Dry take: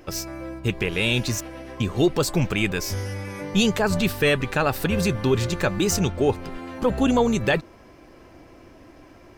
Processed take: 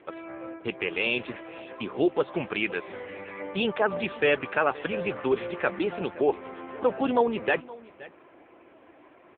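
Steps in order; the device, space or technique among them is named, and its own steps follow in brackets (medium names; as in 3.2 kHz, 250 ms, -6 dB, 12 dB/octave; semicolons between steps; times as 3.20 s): satellite phone (band-pass 370–3100 Hz; delay 521 ms -20 dB; AMR-NB 6.7 kbps 8 kHz)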